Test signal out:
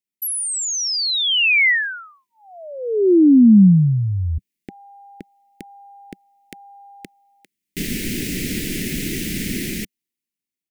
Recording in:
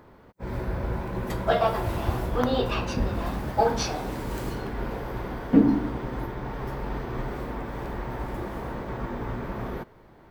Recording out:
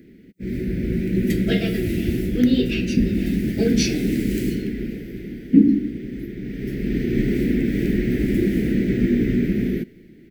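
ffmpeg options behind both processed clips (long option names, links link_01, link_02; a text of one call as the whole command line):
ffmpeg -i in.wav -af "firequalizer=gain_entry='entry(110,0);entry(190,13);entry(360,9);entry(540,-7);entry(1200,-7);entry(2000,8);entry(3500,2);entry(12000,5)':delay=0.05:min_phase=1,dynaudnorm=framelen=160:gausssize=13:maxgain=8.5dB,asuperstop=centerf=980:order=4:qfactor=0.74,volume=-1dB" out.wav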